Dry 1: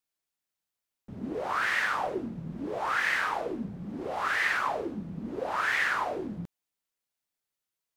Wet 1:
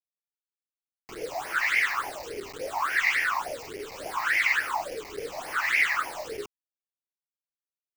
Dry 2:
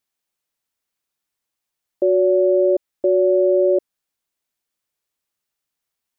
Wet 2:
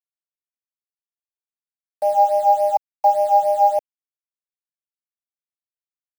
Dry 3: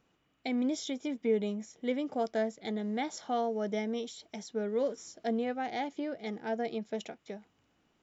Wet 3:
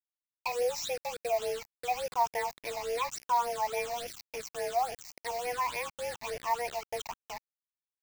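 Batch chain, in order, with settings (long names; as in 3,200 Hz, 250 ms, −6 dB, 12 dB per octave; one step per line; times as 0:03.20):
frequency shifter +240 Hz
bit reduction 7 bits
all-pass phaser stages 8, 3.5 Hz, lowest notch 420–1,200 Hz
level +5 dB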